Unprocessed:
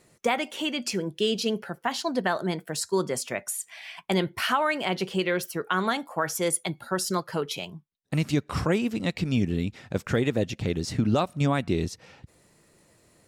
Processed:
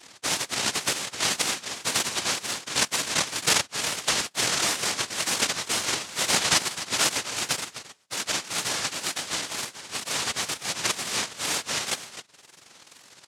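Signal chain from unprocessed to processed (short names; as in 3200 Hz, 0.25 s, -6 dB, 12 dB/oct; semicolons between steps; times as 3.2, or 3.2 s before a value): spectrum mirrored in octaves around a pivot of 1400 Hz; reverb removal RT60 1.3 s; in parallel at -1 dB: compressor, threshold -37 dBFS, peak gain reduction 19 dB; on the sum: limiter -18.5 dBFS, peak gain reduction 9 dB; noise vocoder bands 1; on a send: echo 0.264 s -12.5 dB; on the sum: wow and flutter 120 cents; 3.54–4.21 three-band squash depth 100%; gain +3 dB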